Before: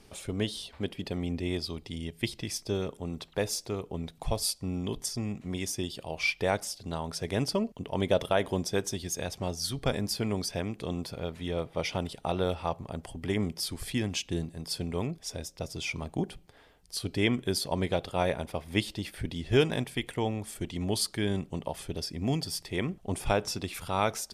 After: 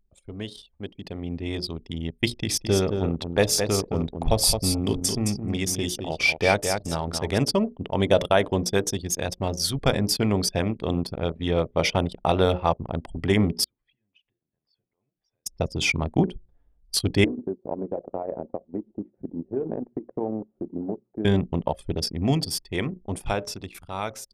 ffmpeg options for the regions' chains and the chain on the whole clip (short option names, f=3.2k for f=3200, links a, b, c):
-filter_complex "[0:a]asettb=1/sr,asplit=3[a][b][c];[a]atrim=end=2.274[d];[b]atrim=start=2.27:end=7.38,asetpts=PTS-STARTPTS,afade=t=in:d=0.004:c=qsin,afade=t=out:st=5.106:d=0.004:c=qsin,bandreject=f=1k:w=16,aecho=1:1:217|434|651:0.501|0.0752|0.0113,atrim=end_sample=225351[e];[c]atrim=start=7.376[f];[d][e]acrossfade=d=0.004:c1=hsin:c2=qsin[g];[g][f]acrossfade=d=0.004:c1=qsin:c2=hsin,asettb=1/sr,asplit=3[h][i][j];[h]atrim=end=13.644[k];[i]atrim=start=13.64:end=15.46,asetpts=PTS-STARTPTS,afade=t=in:d=0.004:c=qsin,afade=t=out:st=1.816:d=0.004:c=qsin,highshelf=f=2.1k:g=-6,acompressor=threshold=-44dB:ratio=8:attack=3.2:release=140:knee=1:detection=peak,bandpass=f=2.4k:t=q:w=0.95[l];[j]atrim=start=15.456[m];[k][l]acrossfade=d=0.004:c1=hsin:c2=qsin[n];[n][m]acrossfade=d=0.004:c1=qsin:c2=hsin,asettb=1/sr,asplit=3[o][p][q];[o]atrim=end=17.244[r];[p]atrim=start=17.24:end=21.25,asetpts=PTS-STARTPTS,afade=t=in:d=0.004:c=qsin,afade=t=out:st=4.006:d=0.004:c=qsin,acompressor=threshold=-31dB:ratio=12:attack=3.2:release=140:knee=1:detection=peak,acrusher=bits=8:mix=0:aa=0.5,asuperpass=centerf=400:order=4:qfactor=0.69[s];[q]atrim=start=21.246[t];[r][s]acrossfade=d=0.004:c1=hsin:c2=qsin[u];[u][t]acrossfade=d=0.004:c1=qsin:c2=hsin,bandreject=f=60:t=h:w=6,bandreject=f=120:t=h:w=6,bandreject=f=180:t=h:w=6,bandreject=f=240:t=h:w=6,bandreject=f=300:t=h:w=6,bandreject=f=360:t=h:w=6,bandreject=f=420:t=h:w=6,bandreject=f=480:t=h:w=6,bandreject=f=540:t=h:w=6,bandreject=f=600:t=h:w=6,anlmdn=1,dynaudnorm=f=400:g=9:m=16dB,volume=-3.5dB"